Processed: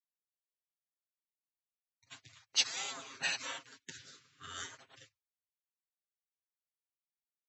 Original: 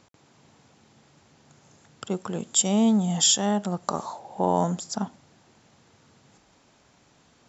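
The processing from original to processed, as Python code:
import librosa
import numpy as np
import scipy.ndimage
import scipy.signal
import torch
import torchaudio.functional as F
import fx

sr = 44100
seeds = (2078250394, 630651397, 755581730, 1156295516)

y = fx.highpass(x, sr, hz=1300.0, slope=6)
y = fx.spec_gate(y, sr, threshold_db=-25, keep='weak')
y = fx.air_absorb(y, sr, metres=76.0)
y = y + 0.84 * np.pad(y, (int(7.5 * sr / 1000.0), 0))[:len(y)]
y = fx.band_widen(y, sr, depth_pct=100)
y = F.gain(torch.from_numpy(y), 7.0).numpy()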